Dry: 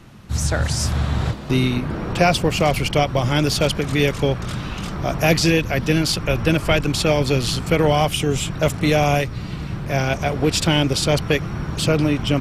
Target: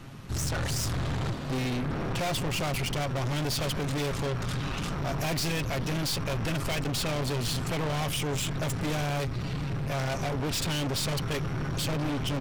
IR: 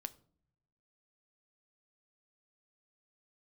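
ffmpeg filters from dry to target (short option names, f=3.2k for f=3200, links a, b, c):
-af "aecho=1:1:7.4:0.39,aeval=exprs='(tanh(25.1*val(0)+0.35)-tanh(0.35))/25.1':c=same"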